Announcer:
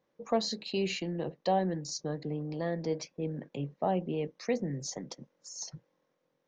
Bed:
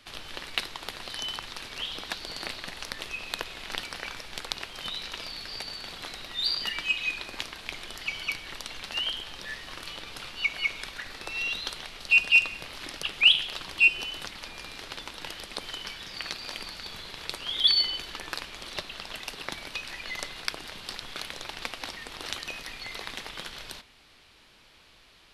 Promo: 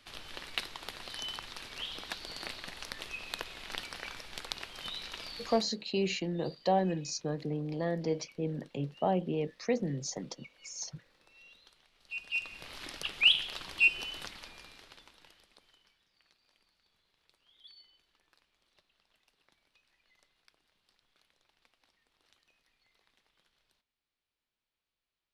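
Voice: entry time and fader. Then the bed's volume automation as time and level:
5.20 s, +0.5 dB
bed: 5.53 s -5.5 dB
5.8 s -27 dB
11.91 s -27 dB
12.72 s -5 dB
14.26 s -5 dB
16.09 s -34.5 dB

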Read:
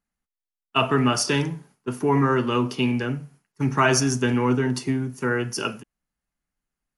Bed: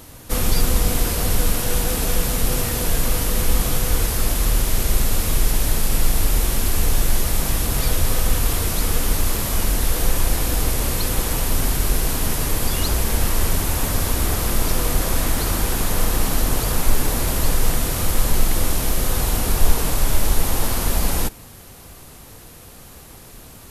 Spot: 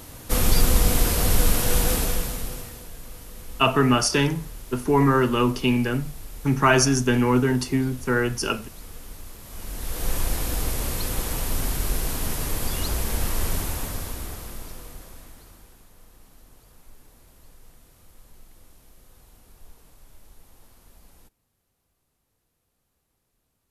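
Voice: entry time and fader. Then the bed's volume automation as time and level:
2.85 s, +1.5 dB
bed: 1.93 s -0.5 dB
2.91 s -21 dB
9.4 s -21 dB
10.13 s -6 dB
13.59 s -6 dB
15.91 s -33 dB

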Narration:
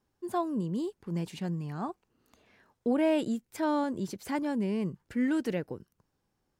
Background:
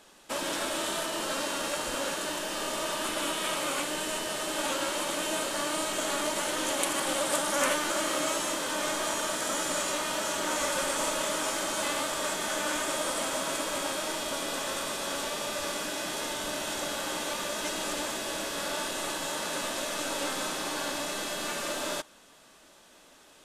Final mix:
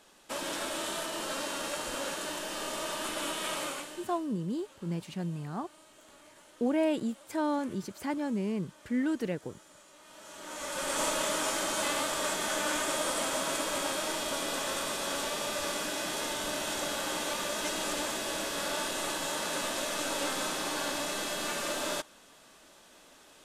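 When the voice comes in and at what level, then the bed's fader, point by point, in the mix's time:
3.75 s, -1.5 dB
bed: 3.63 s -3.5 dB
4.37 s -26.5 dB
9.92 s -26.5 dB
10.99 s -0.5 dB

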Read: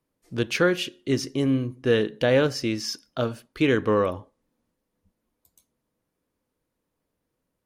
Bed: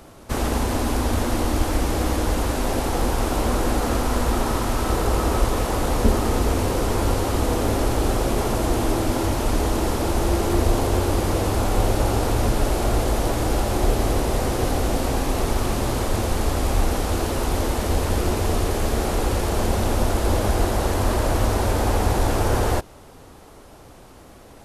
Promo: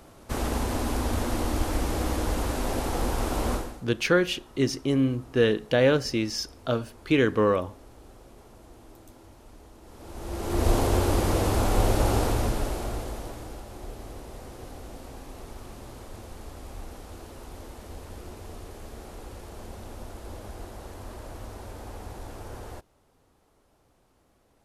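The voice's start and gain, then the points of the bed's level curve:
3.50 s, -0.5 dB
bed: 3.54 s -5.5 dB
3.85 s -29 dB
9.81 s -29 dB
10.69 s -2.5 dB
12.19 s -2.5 dB
13.64 s -20 dB

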